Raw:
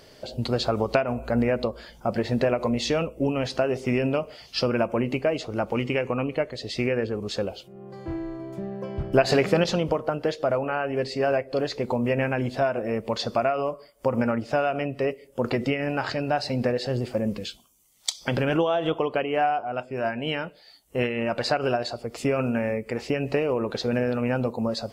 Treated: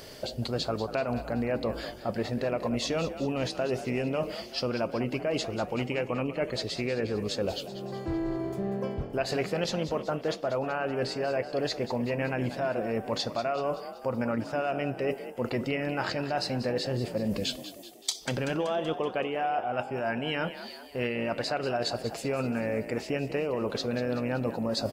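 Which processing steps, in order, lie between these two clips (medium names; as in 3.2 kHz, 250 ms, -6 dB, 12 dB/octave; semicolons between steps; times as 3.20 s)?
treble shelf 8.6 kHz +7.5 dB; reverse; compression 6:1, threshold -32 dBFS, peak gain reduction 17.5 dB; reverse; frequency-shifting echo 190 ms, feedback 54%, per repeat +44 Hz, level -12.5 dB; trim +4.5 dB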